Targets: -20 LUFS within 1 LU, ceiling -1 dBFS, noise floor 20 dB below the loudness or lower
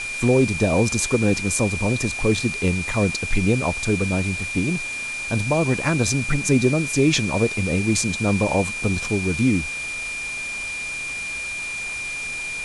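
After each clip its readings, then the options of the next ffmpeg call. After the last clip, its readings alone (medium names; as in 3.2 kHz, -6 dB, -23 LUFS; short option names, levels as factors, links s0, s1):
steady tone 2.4 kHz; tone level -27 dBFS; noise floor -29 dBFS; noise floor target -42 dBFS; loudness -21.5 LUFS; peak level -6.0 dBFS; loudness target -20.0 LUFS
-> -af "bandreject=f=2400:w=30"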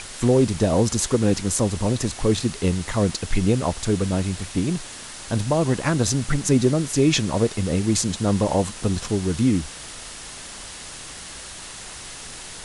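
steady tone not found; noise floor -38 dBFS; noise floor target -42 dBFS
-> -af "afftdn=nr=6:nf=-38"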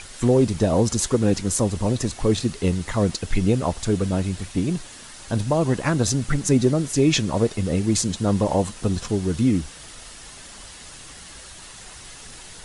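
noise floor -42 dBFS; loudness -22.0 LUFS; peak level -6.5 dBFS; loudness target -20.0 LUFS
-> -af "volume=1.26"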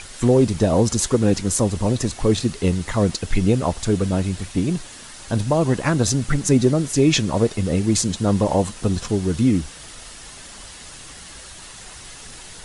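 loudness -20.0 LUFS; peak level -4.5 dBFS; noise floor -40 dBFS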